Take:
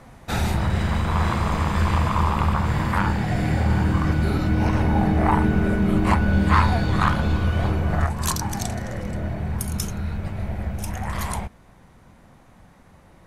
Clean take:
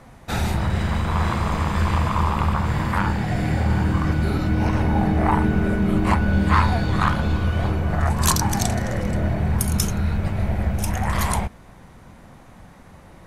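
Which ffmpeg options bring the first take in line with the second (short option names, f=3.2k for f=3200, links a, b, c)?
-af "asetnsamples=n=441:p=0,asendcmd='8.06 volume volume 5.5dB',volume=0dB"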